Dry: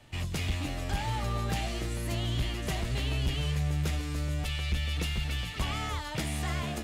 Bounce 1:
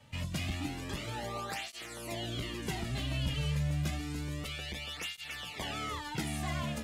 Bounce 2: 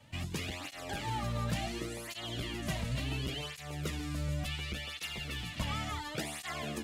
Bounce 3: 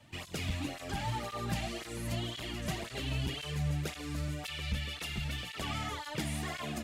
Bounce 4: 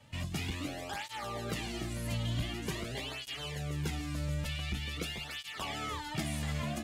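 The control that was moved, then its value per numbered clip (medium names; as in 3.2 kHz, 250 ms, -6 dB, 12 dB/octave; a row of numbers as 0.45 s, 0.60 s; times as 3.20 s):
cancelling through-zero flanger, nulls at: 0.29 Hz, 0.7 Hz, 1.9 Hz, 0.46 Hz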